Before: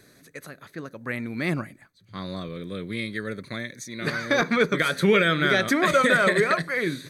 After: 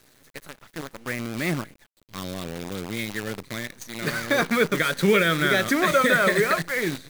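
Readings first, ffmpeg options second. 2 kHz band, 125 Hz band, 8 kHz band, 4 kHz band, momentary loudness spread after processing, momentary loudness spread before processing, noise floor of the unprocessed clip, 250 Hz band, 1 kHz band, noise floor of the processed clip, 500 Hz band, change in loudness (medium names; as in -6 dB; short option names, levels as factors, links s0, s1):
0.0 dB, 0.0 dB, +4.0 dB, +0.5 dB, 19 LU, 20 LU, -58 dBFS, 0.0 dB, 0.0 dB, -61 dBFS, 0.0 dB, 0.0 dB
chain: -af "acrusher=bits=6:dc=4:mix=0:aa=0.000001"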